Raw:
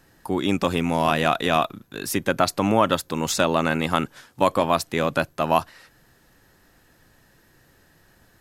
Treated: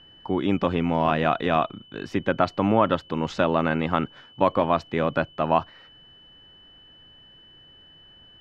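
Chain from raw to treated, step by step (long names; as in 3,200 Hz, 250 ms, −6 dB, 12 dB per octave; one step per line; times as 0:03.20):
high-shelf EQ 3,900 Hz −9 dB
steady tone 3,000 Hz −46 dBFS
high-frequency loss of the air 190 metres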